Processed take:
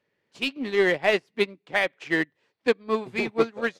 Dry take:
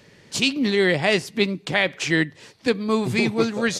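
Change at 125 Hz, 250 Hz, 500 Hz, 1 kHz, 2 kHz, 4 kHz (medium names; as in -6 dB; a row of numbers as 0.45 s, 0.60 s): -13.0 dB, -7.5 dB, -1.5 dB, -1.5 dB, -3.0 dB, -8.0 dB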